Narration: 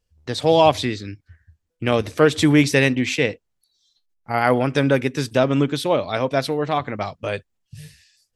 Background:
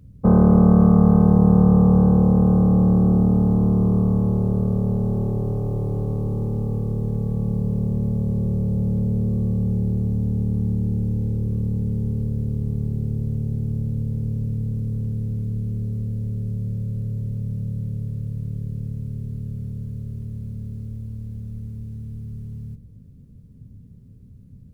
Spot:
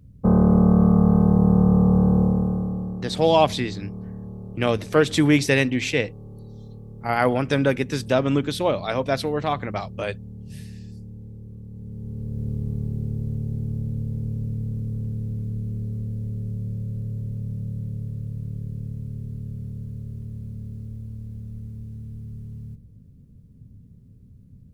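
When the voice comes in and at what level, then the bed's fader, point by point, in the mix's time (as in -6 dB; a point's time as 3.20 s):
2.75 s, -2.5 dB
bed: 2.22 s -2.5 dB
3.04 s -16.5 dB
11.68 s -16.5 dB
12.48 s -3 dB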